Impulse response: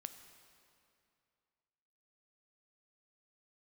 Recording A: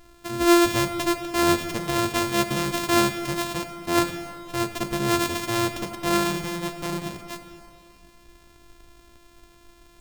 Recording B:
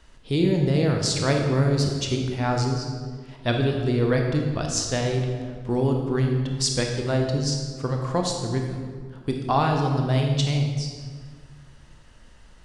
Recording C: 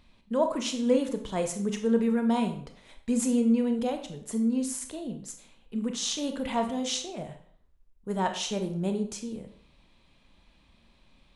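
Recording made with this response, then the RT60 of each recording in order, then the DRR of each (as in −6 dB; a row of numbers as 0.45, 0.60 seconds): A; 2.5, 1.8, 0.55 seconds; 8.5, 1.5, 6.0 decibels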